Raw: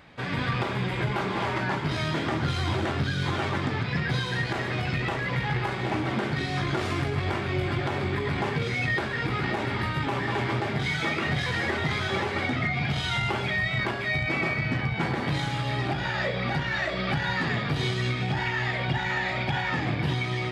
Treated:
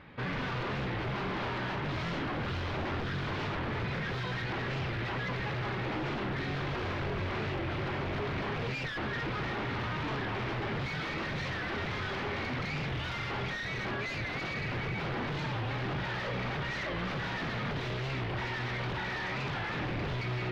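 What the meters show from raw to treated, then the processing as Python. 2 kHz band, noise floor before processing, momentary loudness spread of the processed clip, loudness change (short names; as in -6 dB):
-7.5 dB, -31 dBFS, 0 LU, -7.0 dB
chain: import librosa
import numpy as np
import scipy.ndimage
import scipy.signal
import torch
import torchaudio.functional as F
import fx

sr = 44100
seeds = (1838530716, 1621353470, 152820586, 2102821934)

y = fx.peak_eq(x, sr, hz=690.0, db=-7.0, octaves=0.31)
y = 10.0 ** (-20.5 / 20.0) * np.tanh(y / 10.0 ** (-20.5 / 20.0))
y = fx.quant_float(y, sr, bits=2)
y = 10.0 ** (-29.5 / 20.0) * (np.abs((y / 10.0 ** (-29.5 / 20.0) + 3.0) % 4.0 - 2.0) - 1.0)
y = fx.air_absorb(y, sr, metres=270.0)
y = fx.record_warp(y, sr, rpm=45.0, depth_cents=160.0)
y = F.gain(torch.from_numpy(y), 1.5).numpy()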